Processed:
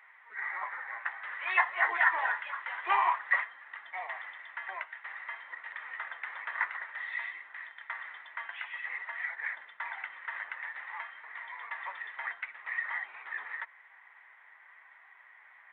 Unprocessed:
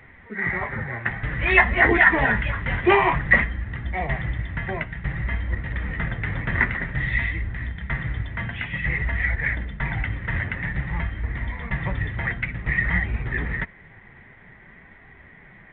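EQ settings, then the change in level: dynamic bell 2.3 kHz, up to -5 dB, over -32 dBFS, Q 1.1; ladder high-pass 850 Hz, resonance 45%; 0.0 dB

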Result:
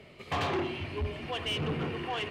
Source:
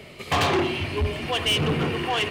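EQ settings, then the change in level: low-pass 3.4 kHz 6 dB/octave; -8.5 dB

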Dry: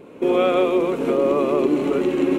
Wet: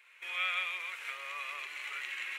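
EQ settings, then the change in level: ladder high-pass 1.7 kHz, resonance 55%; +3.5 dB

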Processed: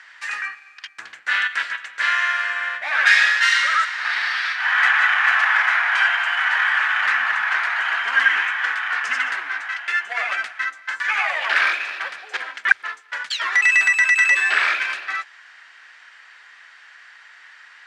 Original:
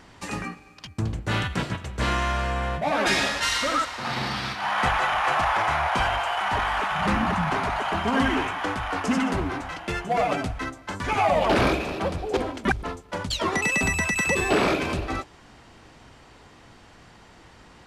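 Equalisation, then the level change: resonant high-pass 1.7 kHz, resonance Q 4; distance through air 55 m; +3.0 dB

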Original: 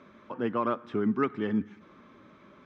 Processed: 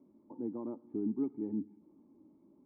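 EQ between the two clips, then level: cascade formant filter u; 0.0 dB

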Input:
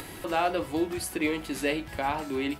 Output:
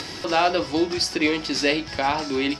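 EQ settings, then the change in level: high-pass 89 Hz 6 dB/octave; resonant low-pass 5.3 kHz, resonance Q 8.4; +6.0 dB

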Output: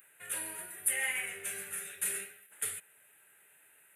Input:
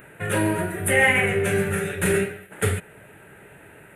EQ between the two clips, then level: differentiator; bass shelf 120 Hz +6 dB; -4.5 dB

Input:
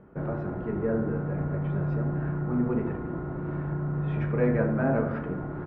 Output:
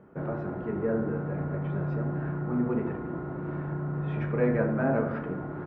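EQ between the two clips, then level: high-pass 130 Hz 6 dB/octave; 0.0 dB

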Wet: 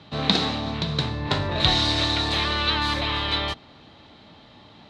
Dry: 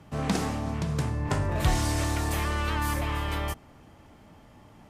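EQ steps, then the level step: high-pass 130 Hz 6 dB/octave; resonant low-pass 3.9 kHz, resonance Q 11; +4.0 dB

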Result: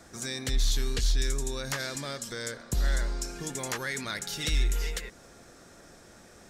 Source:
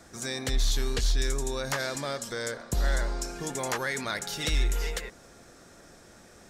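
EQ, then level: dynamic bell 740 Hz, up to -7 dB, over -46 dBFS, Q 0.75; 0.0 dB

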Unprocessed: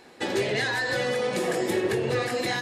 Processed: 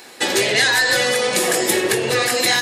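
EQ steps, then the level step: tilt EQ +2.5 dB/octave; treble shelf 7.2 kHz +5 dB; +8.5 dB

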